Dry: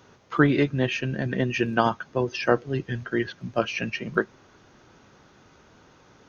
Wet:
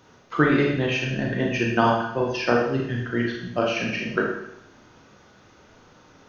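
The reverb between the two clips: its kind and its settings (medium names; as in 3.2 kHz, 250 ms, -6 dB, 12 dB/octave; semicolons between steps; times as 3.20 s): Schroeder reverb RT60 0.77 s, combs from 26 ms, DRR -1 dB; trim -1 dB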